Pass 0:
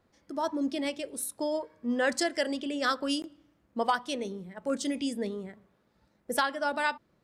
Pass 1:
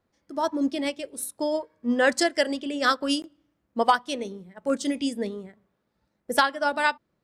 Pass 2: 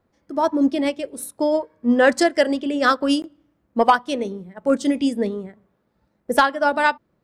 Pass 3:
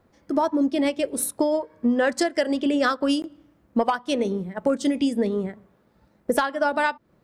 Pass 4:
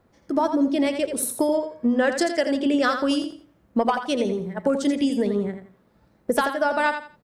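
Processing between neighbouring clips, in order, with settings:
expander for the loud parts 1.5 to 1, over −49 dBFS; level +8 dB
high-shelf EQ 2,400 Hz −9.5 dB; soft clipping −9.5 dBFS, distortion −25 dB; high-shelf EQ 11,000 Hz +4 dB; level +7.5 dB
downward compressor 10 to 1, threshold −25 dBFS, peak gain reduction 16 dB; level +6.5 dB
repeating echo 84 ms, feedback 26%, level −8 dB

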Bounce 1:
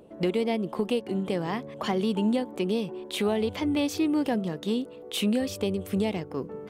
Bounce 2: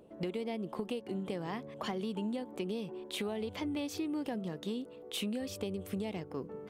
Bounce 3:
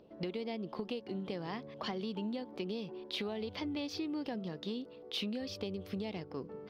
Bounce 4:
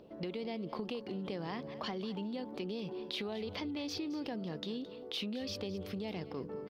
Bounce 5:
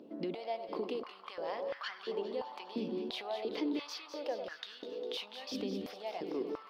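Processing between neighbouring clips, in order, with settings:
downward compressor, threshold −27 dBFS, peak gain reduction 6 dB; level −6 dB
high shelf with overshoot 6,300 Hz −9.5 dB, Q 3; level −2 dB
in parallel at −3 dB: compressor whose output falls as the input rises −44 dBFS, ratio −1; on the sum: single-tap delay 218 ms −15.5 dB; level −3 dB
delay that swaps between a low-pass and a high-pass 101 ms, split 1,300 Hz, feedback 80%, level −8 dB; high-pass on a step sequencer 2.9 Hz 260–1,500 Hz; level −2.5 dB

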